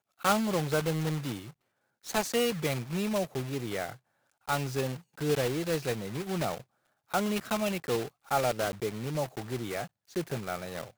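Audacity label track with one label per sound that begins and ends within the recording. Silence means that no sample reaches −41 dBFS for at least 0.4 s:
2.060000	3.930000	sound
4.480000	6.610000	sound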